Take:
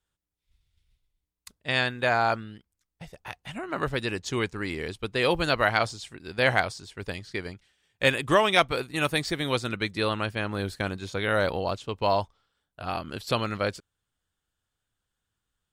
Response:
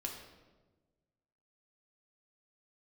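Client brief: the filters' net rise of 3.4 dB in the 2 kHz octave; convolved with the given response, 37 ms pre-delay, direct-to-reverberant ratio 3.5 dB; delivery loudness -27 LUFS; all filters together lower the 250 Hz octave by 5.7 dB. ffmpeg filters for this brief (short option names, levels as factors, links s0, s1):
-filter_complex "[0:a]equalizer=f=250:t=o:g=-8.5,equalizer=f=2000:t=o:g=4.5,asplit=2[s0][s1];[1:a]atrim=start_sample=2205,adelay=37[s2];[s1][s2]afir=irnorm=-1:irlink=0,volume=0.708[s3];[s0][s3]amix=inputs=2:normalize=0,volume=0.75"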